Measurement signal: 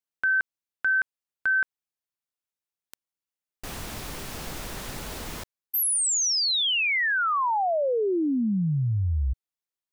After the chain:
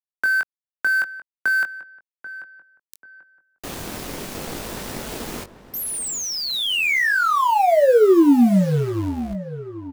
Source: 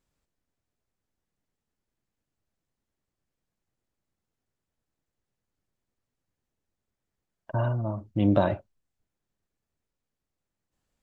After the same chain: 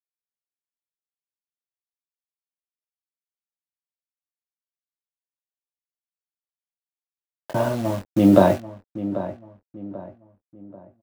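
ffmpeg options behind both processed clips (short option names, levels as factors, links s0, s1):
-filter_complex "[0:a]acrossover=split=2600[s0][s1];[s1]acompressor=threshold=0.0282:ratio=4:attack=1:release=60[s2];[s0][s2]amix=inputs=2:normalize=0,lowshelf=f=96:g=-4.5,acrossover=split=180|590[s3][s4][s5];[s3]alimiter=level_in=2.66:limit=0.0631:level=0:latency=1:release=34,volume=0.376[s6];[s4]acontrast=90[s7];[s6][s7][s5]amix=inputs=3:normalize=0,aeval=exprs='sgn(val(0))*max(abs(val(0))-0.00841,0)':c=same,acrusher=bits=8:dc=4:mix=0:aa=0.000001,asplit=2[s8][s9];[s9]adelay=21,volume=0.447[s10];[s8][s10]amix=inputs=2:normalize=0,asplit=2[s11][s12];[s12]adelay=788,lowpass=f=1600:p=1,volume=0.224,asplit=2[s13][s14];[s14]adelay=788,lowpass=f=1600:p=1,volume=0.39,asplit=2[s15][s16];[s16]adelay=788,lowpass=f=1600:p=1,volume=0.39,asplit=2[s17][s18];[s18]adelay=788,lowpass=f=1600:p=1,volume=0.39[s19];[s11][s13][s15][s17][s19]amix=inputs=5:normalize=0,volume=1.88"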